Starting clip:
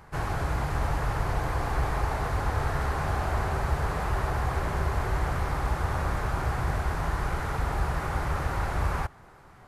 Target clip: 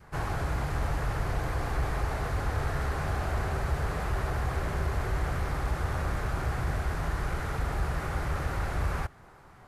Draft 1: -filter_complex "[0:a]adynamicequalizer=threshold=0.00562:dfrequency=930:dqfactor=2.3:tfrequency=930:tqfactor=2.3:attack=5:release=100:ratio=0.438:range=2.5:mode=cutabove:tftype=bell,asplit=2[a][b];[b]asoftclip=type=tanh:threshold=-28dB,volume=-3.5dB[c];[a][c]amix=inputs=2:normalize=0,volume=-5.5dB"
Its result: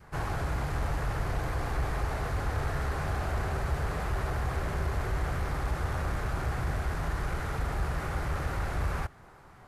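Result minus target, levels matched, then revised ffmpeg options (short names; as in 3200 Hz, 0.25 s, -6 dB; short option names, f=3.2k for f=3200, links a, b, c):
soft clip: distortion +7 dB
-filter_complex "[0:a]adynamicequalizer=threshold=0.00562:dfrequency=930:dqfactor=2.3:tfrequency=930:tqfactor=2.3:attack=5:release=100:ratio=0.438:range=2.5:mode=cutabove:tftype=bell,asplit=2[a][b];[b]asoftclip=type=tanh:threshold=-21.5dB,volume=-3.5dB[c];[a][c]amix=inputs=2:normalize=0,volume=-5.5dB"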